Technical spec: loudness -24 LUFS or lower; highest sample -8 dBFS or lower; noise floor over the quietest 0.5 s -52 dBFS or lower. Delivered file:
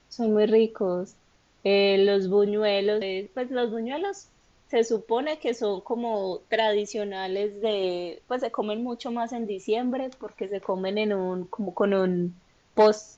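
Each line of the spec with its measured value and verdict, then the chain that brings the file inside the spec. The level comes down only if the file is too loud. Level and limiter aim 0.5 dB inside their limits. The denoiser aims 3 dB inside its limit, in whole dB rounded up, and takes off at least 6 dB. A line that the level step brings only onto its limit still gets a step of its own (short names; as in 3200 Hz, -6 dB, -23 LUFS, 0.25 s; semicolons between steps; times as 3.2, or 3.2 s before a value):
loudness -26.0 LUFS: OK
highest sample -9.0 dBFS: OK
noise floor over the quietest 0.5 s -62 dBFS: OK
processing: none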